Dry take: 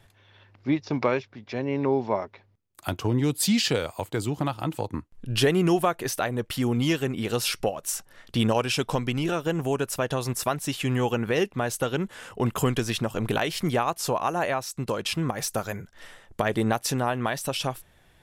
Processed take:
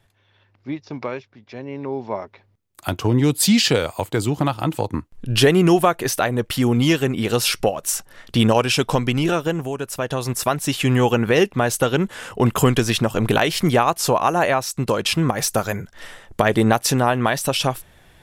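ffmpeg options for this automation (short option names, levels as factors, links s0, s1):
-af "volume=6.68,afade=t=in:st=1.88:d=1.33:silence=0.281838,afade=t=out:st=9.35:d=0.37:silence=0.375837,afade=t=in:st=9.72:d=1.12:silence=0.334965"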